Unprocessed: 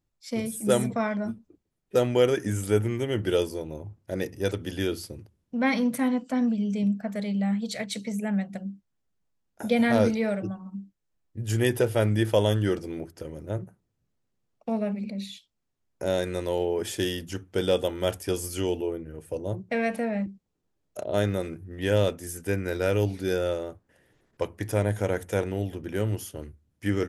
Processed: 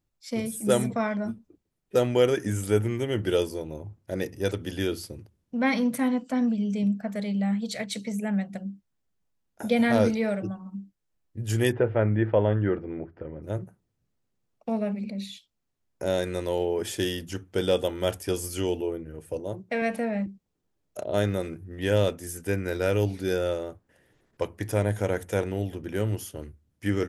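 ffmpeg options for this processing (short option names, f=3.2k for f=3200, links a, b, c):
-filter_complex "[0:a]asplit=3[a][b][c];[a]afade=t=out:st=11.71:d=0.02[d];[b]lowpass=f=2.1k:w=0.5412,lowpass=f=2.1k:w=1.3066,afade=t=in:st=11.71:d=0.02,afade=t=out:st=13.42:d=0.02[e];[c]afade=t=in:st=13.42:d=0.02[f];[d][e][f]amix=inputs=3:normalize=0,asettb=1/sr,asplit=3[g][h][i];[g]atrim=end=19.404[j];[h]atrim=start=19.4:end=19.82,asetpts=PTS-STARTPTS,afade=t=in:d=0.004:c=qsin,afade=t=out:st=0.416:d=0.004:c=qsin,lowshelf=f=130:g=-11[k];[i]atrim=start=19.816[l];[j][k]acrossfade=d=0.004:c1=hsin:c2=qsin[m];[m][l]acrossfade=d=0.004:c1=qsin:c2=hsin"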